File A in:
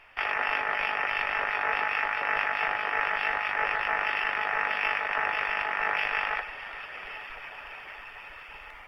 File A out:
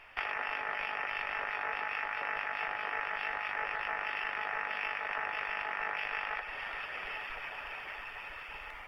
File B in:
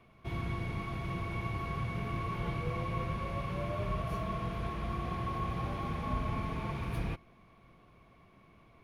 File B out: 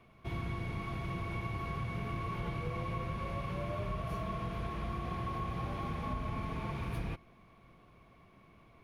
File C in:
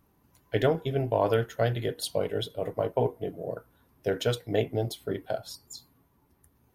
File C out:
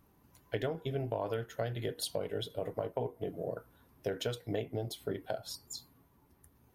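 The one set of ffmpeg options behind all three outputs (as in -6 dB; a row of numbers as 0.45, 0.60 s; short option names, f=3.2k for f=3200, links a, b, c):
-af "acompressor=threshold=-33dB:ratio=4"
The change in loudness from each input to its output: -8.5, -2.0, -8.5 LU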